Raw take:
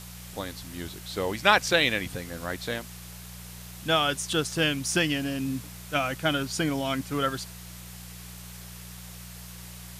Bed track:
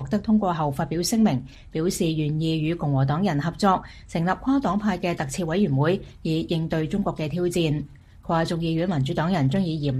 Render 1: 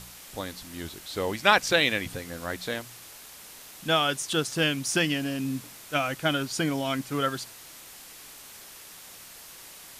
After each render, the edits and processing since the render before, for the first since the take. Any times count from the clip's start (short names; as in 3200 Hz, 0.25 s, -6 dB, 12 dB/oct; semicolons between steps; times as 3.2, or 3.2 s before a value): de-hum 60 Hz, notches 3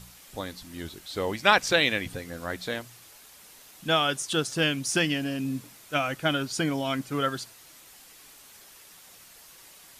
denoiser 6 dB, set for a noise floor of -47 dBFS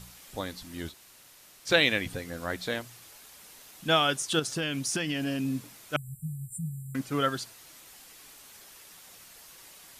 0.92–1.68 room tone, crossfade 0.06 s; 4.39–5.27 compressor, threshold -26 dBFS; 5.96–6.95 brick-wall FIR band-stop 190–7200 Hz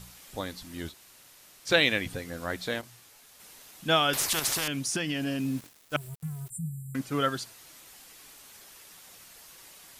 2.81–3.4 detuned doubles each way 51 cents; 4.13–4.68 spectral compressor 4:1; 5.4–6.5 sample gate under -44 dBFS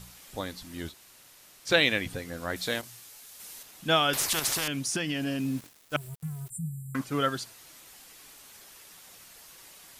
2.56–3.63 high shelf 3500 Hz +8 dB; 6.55–7.04 bell 1100 Hz +14 dB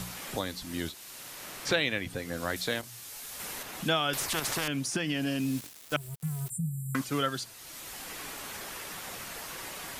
three-band squash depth 70%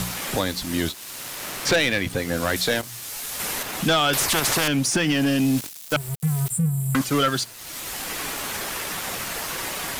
sample leveller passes 3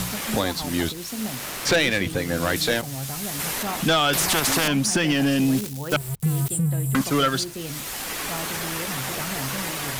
add bed track -11.5 dB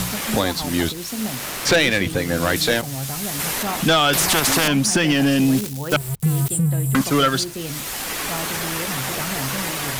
gain +3.5 dB